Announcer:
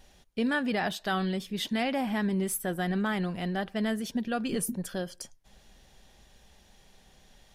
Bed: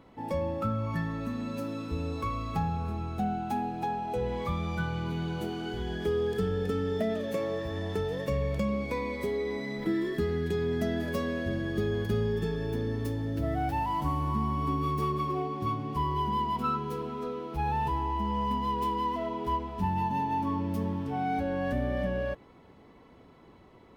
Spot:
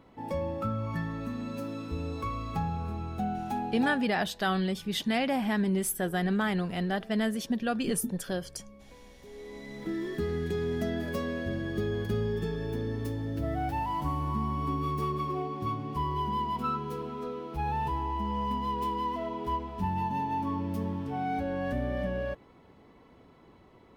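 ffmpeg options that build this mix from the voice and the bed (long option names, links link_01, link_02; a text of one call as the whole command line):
ffmpeg -i stem1.wav -i stem2.wav -filter_complex "[0:a]adelay=3350,volume=1dB[link_01];[1:a]volume=19.5dB,afade=type=out:start_time=3.84:duration=0.28:silence=0.0891251,afade=type=in:start_time=9.21:duration=1.11:silence=0.0891251[link_02];[link_01][link_02]amix=inputs=2:normalize=0" out.wav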